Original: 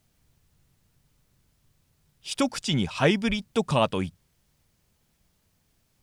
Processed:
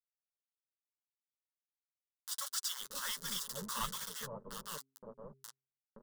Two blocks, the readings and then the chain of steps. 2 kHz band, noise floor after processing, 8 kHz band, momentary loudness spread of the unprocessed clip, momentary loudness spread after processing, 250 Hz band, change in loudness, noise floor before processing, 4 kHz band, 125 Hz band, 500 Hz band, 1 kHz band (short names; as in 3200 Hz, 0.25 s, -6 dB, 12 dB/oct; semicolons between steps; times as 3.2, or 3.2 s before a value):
-14.5 dB, under -85 dBFS, +0.5 dB, 12 LU, 16 LU, -25.5 dB, -13.5 dB, -70 dBFS, -8.5 dB, -24.0 dB, -22.5 dB, -13.0 dB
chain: reverse delay 0.608 s, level -7 dB; transient shaper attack -7 dB, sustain -1 dB; passive tone stack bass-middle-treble 10-0-10; on a send: echo 0.749 s -9.5 dB; on the sum: bit-crush 6-bit; bands offset in time highs, lows 0.52 s, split 710 Hz; upward compressor, threshold -39 dBFS; fixed phaser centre 480 Hz, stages 8; flange 1.5 Hz, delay 4.8 ms, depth 5.9 ms, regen -13%; low shelf 130 Hz -4 dB; de-hum 134 Hz, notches 3; gain +4 dB